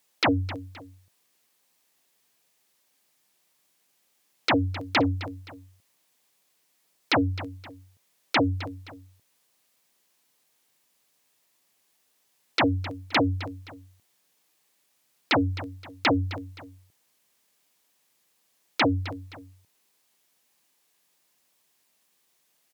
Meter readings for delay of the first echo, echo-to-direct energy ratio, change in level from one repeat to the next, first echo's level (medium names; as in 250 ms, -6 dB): 261 ms, -14.5 dB, -8.5 dB, -15.0 dB